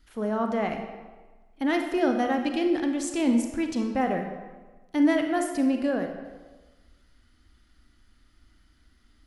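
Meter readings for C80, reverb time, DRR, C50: 8.0 dB, 1.3 s, 4.5 dB, 6.0 dB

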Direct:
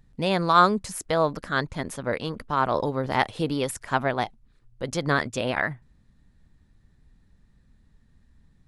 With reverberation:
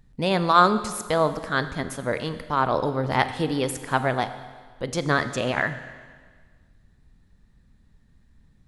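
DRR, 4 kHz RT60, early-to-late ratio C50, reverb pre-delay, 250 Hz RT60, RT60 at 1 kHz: 11.0 dB, 1.6 s, 12.0 dB, 23 ms, 1.6 s, 1.6 s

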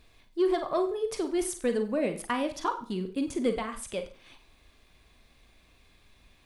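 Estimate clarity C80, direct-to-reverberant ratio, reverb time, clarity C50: 15.0 dB, 7.0 dB, 0.40 s, 11.0 dB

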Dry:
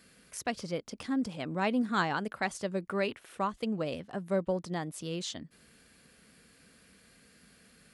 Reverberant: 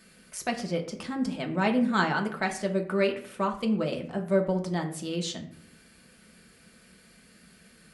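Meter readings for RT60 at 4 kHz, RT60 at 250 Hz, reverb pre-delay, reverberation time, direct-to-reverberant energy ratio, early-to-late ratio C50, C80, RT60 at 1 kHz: 0.40 s, 0.80 s, 3 ms, 0.60 s, 2.0 dB, 11.0 dB, 14.0 dB, 0.55 s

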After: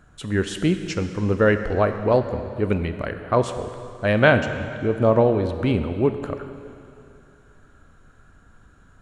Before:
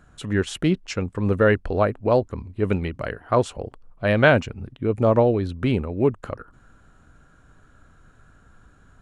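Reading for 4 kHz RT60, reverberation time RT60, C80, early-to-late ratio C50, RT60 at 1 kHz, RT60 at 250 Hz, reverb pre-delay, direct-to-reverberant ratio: 2.5 s, 2.6 s, 9.5 dB, 9.0 dB, 2.6 s, 2.6 s, 13 ms, 8.0 dB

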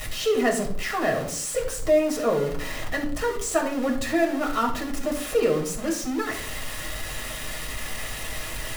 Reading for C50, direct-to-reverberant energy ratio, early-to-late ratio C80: 9.0 dB, 0.0 dB, 12.5 dB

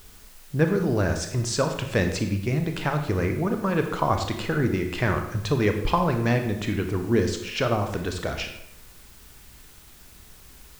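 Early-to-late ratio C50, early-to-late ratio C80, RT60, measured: 7.0 dB, 9.5 dB, 0.80 s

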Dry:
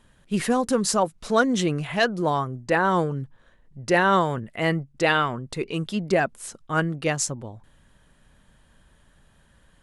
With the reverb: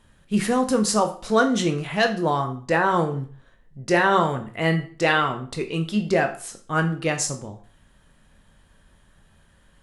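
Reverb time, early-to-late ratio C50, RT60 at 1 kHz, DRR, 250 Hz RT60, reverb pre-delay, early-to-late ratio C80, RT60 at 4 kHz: 0.45 s, 11.5 dB, 0.40 s, 5.0 dB, 0.45 s, 15 ms, 16.0 dB, 0.40 s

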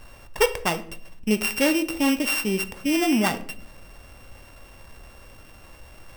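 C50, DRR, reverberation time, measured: 14.5 dB, 10.0 dB, 0.60 s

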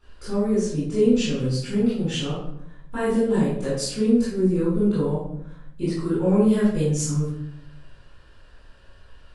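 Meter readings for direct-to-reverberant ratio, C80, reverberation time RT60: -12.0 dB, 4.0 dB, 0.70 s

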